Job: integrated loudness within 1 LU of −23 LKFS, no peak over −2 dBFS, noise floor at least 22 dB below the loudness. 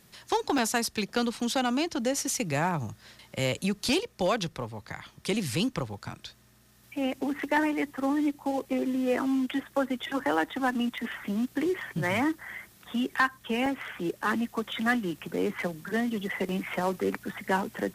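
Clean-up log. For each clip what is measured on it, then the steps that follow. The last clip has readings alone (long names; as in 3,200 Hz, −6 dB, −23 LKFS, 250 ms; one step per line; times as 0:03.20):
number of dropouts 6; longest dropout 1.7 ms; integrated loudness −29.5 LKFS; sample peak −14.5 dBFS; target loudness −23.0 LKFS
→ repair the gap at 0:00.58/0:03.89/0:10.34/0:10.98/0:13.66/0:16.49, 1.7 ms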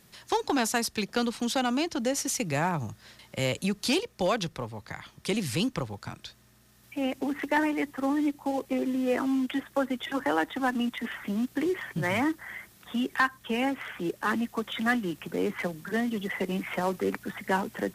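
number of dropouts 0; integrated loudness −29.5 LKFS; sample peak −14.5 dBFS; target loudness −23.0 LKFS
→ level +6.5 dB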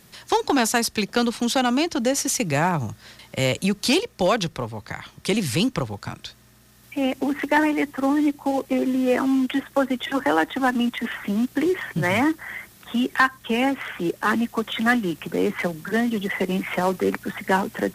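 integrated loudness −23.0 LKFS; sample peak −8.0 dBFS; background noise floor −53 dBFS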